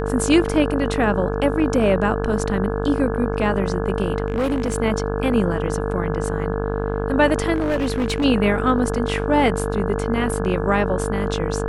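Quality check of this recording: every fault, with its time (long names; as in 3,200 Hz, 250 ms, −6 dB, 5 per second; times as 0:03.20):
mains buzz 50 Hz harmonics 34 −25 dBFS
whistle 450 Hz −27 dBFS
0:04.26–0:04.76: clipping −17 dBFS
0:07.54–0:08.25: clipping −17 dBFS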